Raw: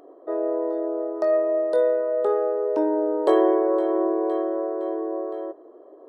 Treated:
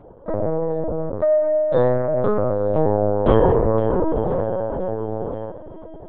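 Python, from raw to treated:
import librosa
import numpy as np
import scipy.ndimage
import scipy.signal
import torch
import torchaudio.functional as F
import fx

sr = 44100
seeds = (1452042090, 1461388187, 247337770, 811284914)

y = fx.comb(x, sr, ms=7.4, depth=0.39, at=(4.34, 5.0))
y = fx.echo_diffused(y, sr, ms=994, feedback_pct=40, wet_db=-15.0)
y = fx.lpc_vocoder(y, sr, seeds[0], excitation='pitch_kept', order=8)
y = F.gain(torch.from_numpy(y), 3.5).numpy()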